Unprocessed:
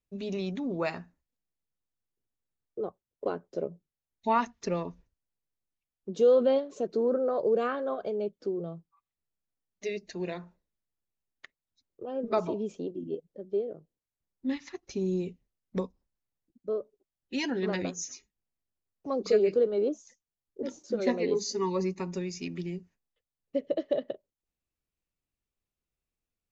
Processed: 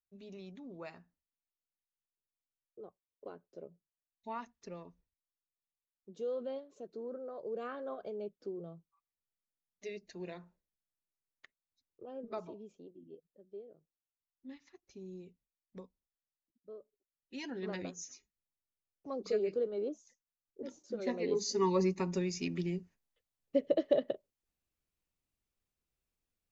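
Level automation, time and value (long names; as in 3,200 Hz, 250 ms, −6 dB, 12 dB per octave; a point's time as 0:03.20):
0:07.40 −16 dB
0:07.81 −9.5 dB
0:12.04 −9.5 dB
0:12.69 −18 dB
0:16.80 −18 dB
0:17.70 −9 dB
0:21.05 −9 dB
0:21.63 0 dB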